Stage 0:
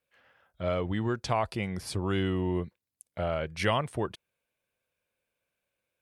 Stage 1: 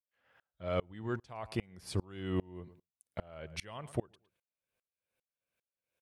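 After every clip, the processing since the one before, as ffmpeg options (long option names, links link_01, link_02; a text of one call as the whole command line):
ffmpeg -i in.wav -filter_complex "[0:a]asplit=2[link_01][link_02];[link_02]adelay=110,lowpass=frequency=2600:poles=1,volume=-21dB,asplit=2[link_03][link_04];[link_04]adelay=110,lowpass=frequency=2600:poles=1,volume=0.17[link_05];[link_01][link_03][link_05]amix=inputs=3:normalize=0,aeval=exprs='val(0)*pow(10,-31*if(lt(mod(-2.5*n/s,1),2*abs(-2.5)/1000),1-mod(-2.5*n/s,1)/(2*abs(-2.5)/1000),(mod(-2.5*n/s,1)-2*abs(-2.5)/1000)/(1-2*abs(-2.5)/1000))/20)':channel_layout=same,volume=1dB" out.wav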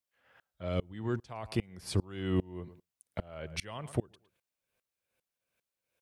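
ffmpeg -i in.wav -filter_complex "[0:a]acrossover=split=410|3000[link_01][link_02][link_03];[link_02]acompressor=threshold=-44dB:ratio=6[link_04];[link_01][link_04][link_03]amix=inputs=3:normalize=0,volume=4.5dB" out.wav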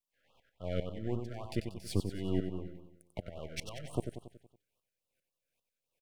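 ffmpeg -i in.wav -af "aeval=exprs='if(lt(val(0),0),0.251*val(0),val(0))':channel_layout=same,aecho=1:1:93|186|279|372|465|558:0.422|0.219|0.114|0.0593|0.0308|0.016,afftfilt=real='re*(1-between(b*sr/1024,910*pow(1900/910,0.5+0.5*sin(2*PI*3.6*pts/sr))/1.41,910*pow(1900/910,0.5+0.5*sin(2*PI*3.6*pts/sr))*1.41))':imag='im*(1-between(b*sr/1024,910*pow(1900/910,0.5+0.5*sin(2*PI*3.6*pts/sr))/1.41,910*pow(1900/910,0.5+0.5*sin(2*PI*3.6*pts/sr))*1.41))':win_size=1024:overlap=0.75" out.wav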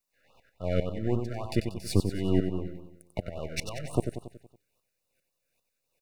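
ffmpeg -i in.wav -af "asuperstop=centerf=3200:order=8:qfactor=7.2,volume=7.5dB" out.wav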